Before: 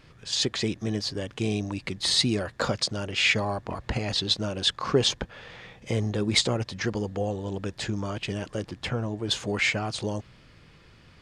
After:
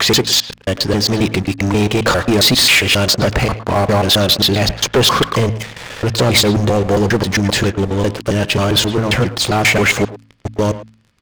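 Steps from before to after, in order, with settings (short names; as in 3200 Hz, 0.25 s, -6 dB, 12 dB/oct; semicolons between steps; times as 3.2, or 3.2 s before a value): slices in reverse order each 0.134 s, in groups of 5; sample leveller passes 5; de-hum 55.1 Hz, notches 5; speakerphone echo 0.11 s, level -12 dB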